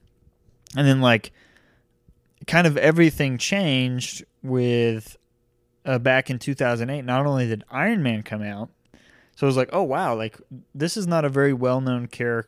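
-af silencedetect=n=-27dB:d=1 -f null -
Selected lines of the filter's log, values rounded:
silence_start: 1.25
silence_end: 2.48 | silence_duration: 1.23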